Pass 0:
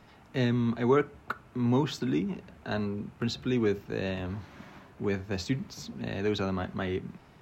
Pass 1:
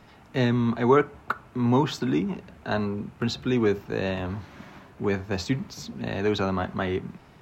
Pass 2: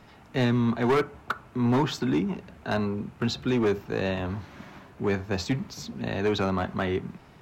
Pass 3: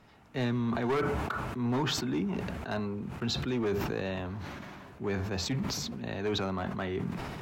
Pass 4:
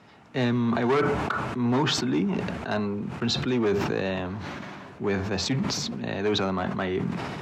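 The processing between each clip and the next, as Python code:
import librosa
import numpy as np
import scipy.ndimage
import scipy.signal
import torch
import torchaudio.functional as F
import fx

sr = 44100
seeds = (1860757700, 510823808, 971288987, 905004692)

y1 = fx.dynamic_eq(x, sr, hz=940.0, q=1.1, threshold_db=-46.0, ratio=4.0, max_db=5)
y1 = y1 * 10.0 ** (3.5 / 20.0)
y2 = np.clip(10.0 ** (18.5 / 20.0) * y1, -1.0, 1.0) / 10.0 ** (18.5 / 20.0)
y3 = fx.sustainer(y2, sr, db_per_s=22.0)
y3 = y3 * 10.0 ** (-7.0 / 20.0)
y4 = fx.bandpass_edges(y3, sr, low_hz=110.0, high_hz=7800.0)
y4 = y4 * 10.0 ** (6.5 / 20.0)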